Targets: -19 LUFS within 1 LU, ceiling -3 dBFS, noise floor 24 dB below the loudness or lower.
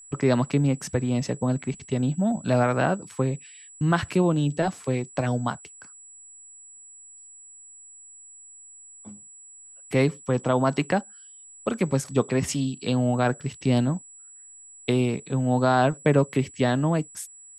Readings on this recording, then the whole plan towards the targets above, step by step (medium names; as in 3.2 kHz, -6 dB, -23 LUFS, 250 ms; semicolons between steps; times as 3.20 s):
steady tone 7.8 kHz; tone level -45 dBFS; loudness -25.0 LUFS; peak level -7.0 dBFS; loudness target -19.0 LUFS
-> band-stop 7.8 kHz, Q 30; trim +6 dB; peak limiter -3 dBFS